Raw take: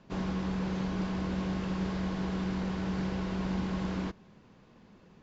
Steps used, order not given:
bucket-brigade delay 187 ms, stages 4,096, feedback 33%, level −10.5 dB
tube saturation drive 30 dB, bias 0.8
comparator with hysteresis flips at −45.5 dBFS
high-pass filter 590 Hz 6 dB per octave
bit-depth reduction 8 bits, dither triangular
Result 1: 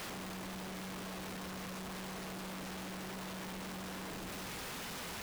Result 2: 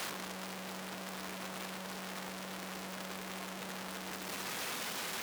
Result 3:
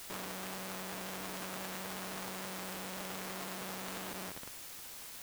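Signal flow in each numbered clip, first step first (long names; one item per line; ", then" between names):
tube saturation, then bucket-brigade delay, then bit-depth reduction, then high-pass filter, then comparator with hysteresis
bucket-brigade delay, then bit-depth reduction, then comparator with hysteresis, then tube saturation, then high-pass filter
bucket-brigade delay, then comparator with hysteresis, then high-pass filter, then tube saturation, then bit-depth reduction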